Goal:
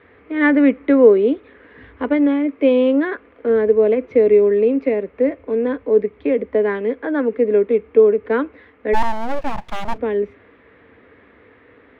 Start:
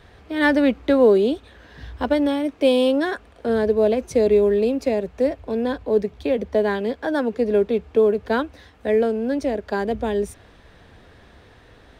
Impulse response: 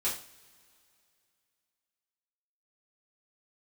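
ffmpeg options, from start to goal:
-filter_complex "[0:a]highpass=110,equalizer=f=150:t=q:w=4:g=-10,equalizer=f=280:t=q:w=4:g=8,equalizer=f=460:t=q:w=4:g=8,equalizer=f=740:t=q:w=4:g=-5,equalizer=f=1.2k:t=q:w=4:g=5,equalizer=f=2.1k:t=q:w=4:g=9,lowpass=f=2.7k:w=0.5412,lowpass=f=2.7k:w=1.3066,asplit=2[a][b];[1:a]atrim=start_sample=2205[c];[b][c]afir=irnorm=-1:irlink=0,volume=-26.5dB[d];[a][d]amix=inputs=2:normalize=0,asplit=3[e][f][g];[e]afade=t=out:st=8.93:d=0.02[h];[f]aeval=exprs='abs(val(0))':c=same,afade=t=in:st=8.93:d=0.02,afade=t=out:st=9.97:d=0.02[i];[g]afade=t=in:st=9.97:d=0.02[j];[h][i][j]amix=inputs=3:normalize=0,volume=-2dB"

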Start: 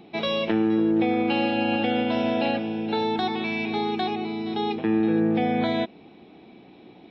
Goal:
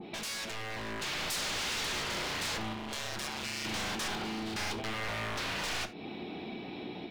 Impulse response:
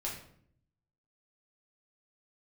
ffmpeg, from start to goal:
-filter_complex "[0:a]asettb=1/sr,asplit=3[a][b][c];[a]atrim=end=0.764[d];[b]atrim=start=0.76:end=1.36,asetpts=PTS-STARTPTS,afade=t=in:d=0.004:c=qsin,afade=t=out:st=0.596:d=0.004:c=qsin,aecho=1:1:1.8:0.72,atrim=end_sample=26460[e];[c]atrim=start=1.356[f];[d][e]acrossfade=d=0.004:c1=hsin:c2=qsin[g];[g][f]acrossfade=d=0.004:c1=qsin:c2=hsin,asettb=1/sr,asplit=3[h][i][j];[h]atrim=end=4.434[k];[i]atrim=start=4.43:end=4.94,asetpts=PTS-STARTPTS,afade=t=in:d=0.004:c=qsin,afade=t=out:st=0.506:d=0.004:c=qsin,lowshelf=f=110:t=q:w=3:g=12.5[l];[j]atrim=start=4.936[m];[k][l]acrossfade=d=0.004:c1=hsin:c2=qsin[n];[n][m]acrossfade=d=0.004:c1=qsin:c2=hsin,aeval=exprs='0.0355*(abs(mod(val(0)/0.0355+3,4)-2)-1)':c=same,acompressor=threshold=-45dB:ratio=6,asettb=1/sr,asplit=3[o][p][q];[o]atrim=end=2.734[r];[p]atrim=start=2.73:end=3.65,asetpts=PTS-STARTPTS,afade=t=in:d=0.004:c=qsin,afade=t=out:st=0.916:d=0.004:c=qsin,tremolo=f=140:d=0.71[s];[q]atrim=start=3.646[t];[r][s]acrossfade=d=0.004:c1=hsin:c2=qsin[u];[u][t]acrossfade=d=0.004:c1=qsin:c2=hsin,dynaudnorm=f=640:g=3:m=4.5dB,asplit=2[v][w];[1:a]atrim=start_sample=2205,atrim=end_sample=3969[x];[w][x]afir=irnorm=-1:irlink=0,volume=-6.5dB[y];[v][y]amix=inputs=2:normalize=0,adynamicequalizer=threshold=0.00141:dfrequency=1900:dqfactor=0.7:tfrequency=1900:tqfactor=0.7:attack=5:release=100:ratio=0.375:range=2.5:mode=boostabove:tftype=highshelf,volume=1dB"

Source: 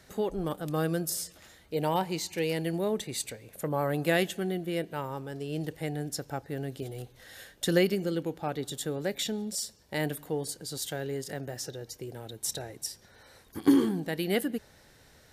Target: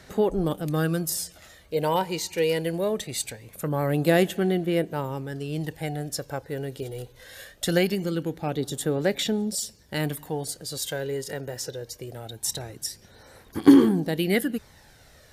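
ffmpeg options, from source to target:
-af "aphaser=in_gain=1:out_gain=1:delay=2.1:decay=0.4:speed=0.22:type=sinusoidal,volume=3.5dB"

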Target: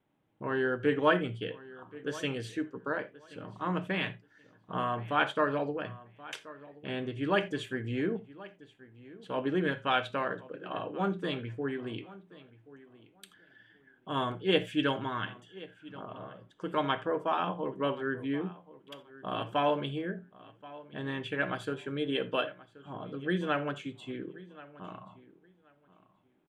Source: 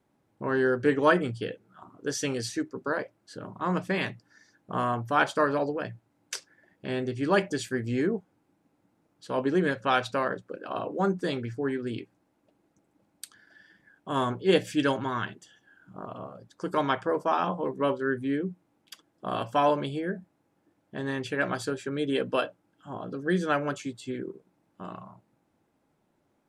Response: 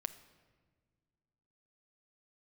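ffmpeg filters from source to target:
-filter_complex "[0:a]highshelf=f=4k:t=q:w=3:g=-7,asplit=2[a][b];[b]adelay=1079,lowpass=f=4.6k:p=1,volume=-19dB,asplit=2[c][d];[d]adelay=1079,lowpass=f=4.6k:p=1,volume=0.19[e];[a][c][e]amix=inputs=3:normalize=0[f];[1:a]atrim=start_sample=2205,afade=t=out:st=0.14:d=0.01,atrim=end_sample=6615[g];[f][g]afir=irnorm=-1:irlink=0,volume=-3dB"

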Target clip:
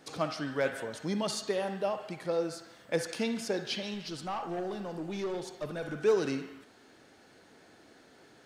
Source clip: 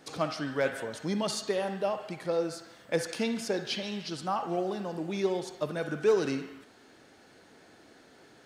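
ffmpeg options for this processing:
-filter_complex "[0:a]asettb=1/sr,asplit=3[a][b][c];[a]atrim=end=3.944[d];[b]atrim=start=3.94:end=6.04,asetpts=PTS-STARTPTS,afade=t=in:d=0.004:c=qsin,afade=t=out:st=2.096:d=0.004:c=qsin,aeval=exprs='(tanh(25.1*val(0)+0.15)-tanh(0.15))/25.1':c=same[e];[c]atrim=start=6.036[f];[d][e]acrossfade=d=0.004:c1=hsin:c2=qsin[g];[g][f]acrossfade=d=0.004:c1=qsin:c2=hsin,volume=-1.5dB"

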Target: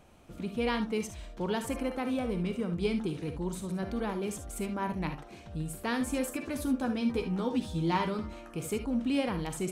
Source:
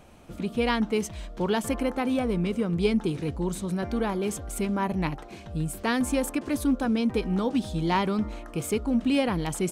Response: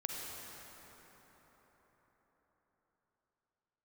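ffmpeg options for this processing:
-filter_complex "[0:a]asettb=1/sr,asplit=3[a][b][c];[a]atrim=end=6.164[d];[b]atrim=start=6.16:end=8.55,asetpts=PTS-STARTPTS,afade=t=in:d=0.004:c=qsin,afade=t=out:st=2.386:d=0.004:c=qsin,asplit=2[e][f];[f]adelay=12,volume=-6dB[g];[e][g]amix=inputs=2:normalize=0,atrim=end_sample=105399[h];[c]atrim=start=8.546[i];[d][h]acrossfade=d=0.004:c1=hsin:c2=qsin[j];[j][i]acrossfade=d=0.004:c1=qsin:c2=hsin[k];[1:a]atrim=start_sample=2205,atrim=end_sample=3528[l];[k][l]afir=irnorm=-1:irlink=0,volume=-4dB"

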